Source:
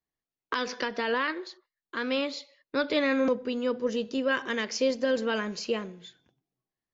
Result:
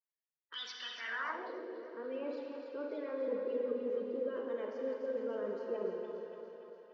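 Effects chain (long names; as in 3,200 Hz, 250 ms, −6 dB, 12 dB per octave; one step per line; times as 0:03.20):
spectral magnitudes quantised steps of 30 dB
low-pass that shuts in the quiet parts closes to 1,300 Hz, open at −25.5 dBFS
reversed playback
downward compressor, threshold −37 dBFS, peak gain reduction 15 dB
reversed playback
feedback echo with a high-pass in the loop 289 ms, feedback 67%, high-pass 330 Hz, level −7 dB
on a send at −1 dB: convolution reverb RT60 2.8 s, pre-delay 28 ms
on the sum: band-pass filter sweep 3,200 Hz → 460 Hz, 0:00.91–0:01.60
level +4 dB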